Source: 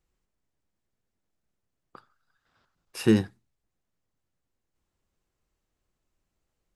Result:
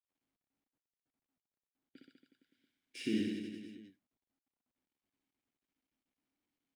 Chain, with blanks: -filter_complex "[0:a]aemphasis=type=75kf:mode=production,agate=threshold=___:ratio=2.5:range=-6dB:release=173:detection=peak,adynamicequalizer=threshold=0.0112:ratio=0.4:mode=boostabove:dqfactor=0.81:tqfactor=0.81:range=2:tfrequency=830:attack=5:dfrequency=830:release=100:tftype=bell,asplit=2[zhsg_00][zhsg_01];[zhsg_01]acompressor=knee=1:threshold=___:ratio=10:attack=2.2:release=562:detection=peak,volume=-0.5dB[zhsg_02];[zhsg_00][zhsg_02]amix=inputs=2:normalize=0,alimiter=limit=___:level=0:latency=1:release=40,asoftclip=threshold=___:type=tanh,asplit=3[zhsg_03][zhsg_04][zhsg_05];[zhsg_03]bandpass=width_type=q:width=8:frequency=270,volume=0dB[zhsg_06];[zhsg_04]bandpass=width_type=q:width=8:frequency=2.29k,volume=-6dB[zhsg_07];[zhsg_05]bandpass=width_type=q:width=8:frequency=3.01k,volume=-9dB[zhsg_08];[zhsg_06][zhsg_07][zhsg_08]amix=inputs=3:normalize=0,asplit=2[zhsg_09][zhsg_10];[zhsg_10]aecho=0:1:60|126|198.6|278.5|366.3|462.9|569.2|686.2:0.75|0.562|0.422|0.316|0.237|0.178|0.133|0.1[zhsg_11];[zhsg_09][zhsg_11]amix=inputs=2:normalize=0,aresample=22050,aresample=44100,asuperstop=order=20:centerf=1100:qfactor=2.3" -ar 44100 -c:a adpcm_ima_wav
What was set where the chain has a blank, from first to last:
-54dB, -27dB, -10dB, -16.5dB